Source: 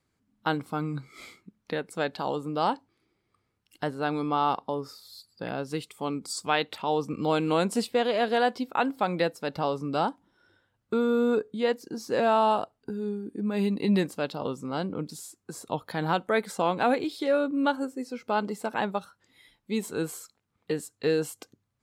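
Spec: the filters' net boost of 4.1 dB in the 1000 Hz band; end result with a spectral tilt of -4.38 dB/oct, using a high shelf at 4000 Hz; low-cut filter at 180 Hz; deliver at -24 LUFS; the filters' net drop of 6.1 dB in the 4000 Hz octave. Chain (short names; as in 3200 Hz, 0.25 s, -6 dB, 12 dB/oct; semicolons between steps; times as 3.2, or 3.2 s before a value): HPF 180 Hz; bell 1000 Hz +6 dB; high shelf 4000 Hz -5 dB; bell 4000 Hz -5.5 dB; gain +3 dB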